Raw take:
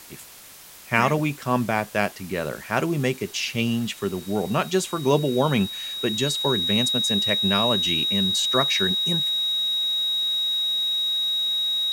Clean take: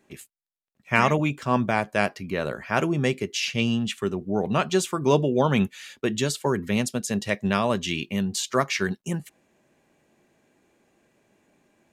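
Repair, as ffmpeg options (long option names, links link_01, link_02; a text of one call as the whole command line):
ffmpeg -i in.wav -af "adeclick=threshold=4,bandreject=frequency=3800:width=30,afwtdn=0.0063" out.wav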